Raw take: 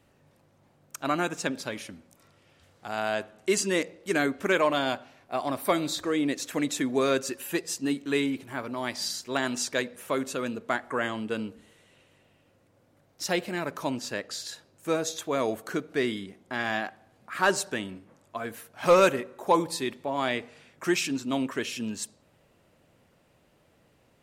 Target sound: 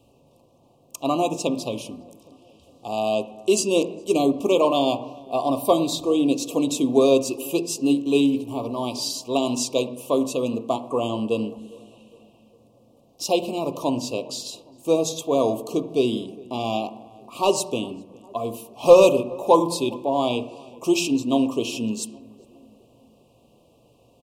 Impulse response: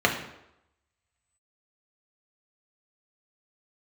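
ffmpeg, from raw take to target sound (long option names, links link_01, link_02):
-filter_complex "[0:a]asuperstop=centerf=1700:order=12:qfactor=1.2,asplit=2[link_01][link_02];[link_02]adelay=408,lowpass=frequency=1400:poles=1,volume=-22dB,asplit=2[link_03][link_04];[link_04]adelay=408,lowpass=frequency=1400:poles=1,volume=0.53,asplit=2[link_05][link_06];[link_06]adelay=408,lowpass=frequency=1400:poles=1,volume=0.53,asplit=2[link_07][link_08];[link_08]adelay=408,lowpass=frequency=1400:poles=1,volume=0.53[link_09];[link_01][link_03][link_05][link_07][link_09]amix=inputs=5:normalize=0,asplit=2[link_10][link_11];[1:a]atrim=start_sample=2205,lowpass=2100[link_12];[link_11][link_12]afir=irnorm=-1:irlink=0,volume=-19.5dB[link_13];[link_10][link_13]amix=inputs=2:normalize=0,volume=4dB"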